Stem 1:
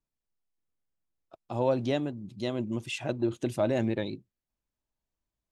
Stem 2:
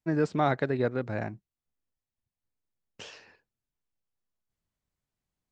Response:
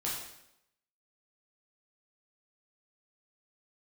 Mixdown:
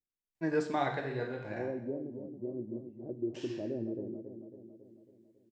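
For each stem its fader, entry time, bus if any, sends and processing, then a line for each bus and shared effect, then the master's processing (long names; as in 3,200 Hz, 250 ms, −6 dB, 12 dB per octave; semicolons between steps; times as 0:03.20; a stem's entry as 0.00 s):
+1.0 dB, 0.00 s, send −15 dB, echo send −7 dB, transistor ladder low-pass 460 Hz, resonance 45%
−4.0 dB, 0.35 s, send −6 dB, no echo send, notch filter 1,300 Hz, Q 5.6; automatic ducking −12 dB, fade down 0.75 s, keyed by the first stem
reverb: on, RT60 0.80 s, pre-delay 6 ms
echo: repeating echo 275 ms, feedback 56%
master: low-shelf EQ 420 Hz −8 dB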